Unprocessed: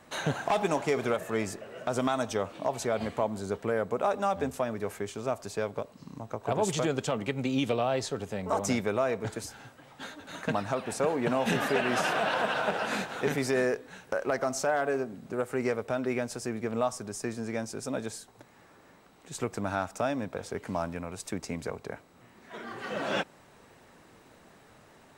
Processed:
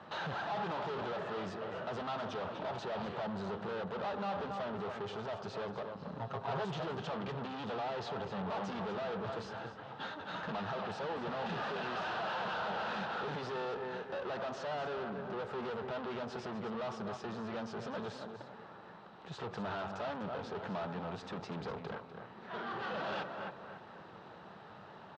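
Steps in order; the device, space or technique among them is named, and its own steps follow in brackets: analogue delay pedal into a guitar amplifier (bucket-brigade echo 280 ms, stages 4096, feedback 32%, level -16 dB; valve stage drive 43 dB, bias 0.55; cabinet simulation 98–4000 Hz, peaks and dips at 190 Hz +4 dB, 270 Hz -8 dB, 860 Hz +5 dB, 1.3 kHz +4 dB, 2.2 kHz -8 dB); 6.19–6.65 s: comb 7.4 ms, depth 73%; delay 249 ms -12.5 dB; trim +5.5 dB

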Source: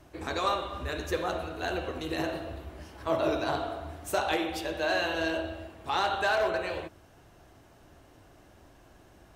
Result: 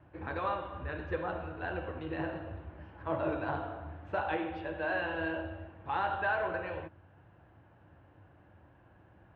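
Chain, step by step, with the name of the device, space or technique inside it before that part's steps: bass cabinet (cabinet simulation 87–2200 Hz, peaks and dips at 93 Hz +6 dB, 250 Hz -7 dB, 400 Hz -9 dB, 670 Hz -7 dB, 1.2 kHz -6 dB, 2.1 kHz -7 dB)

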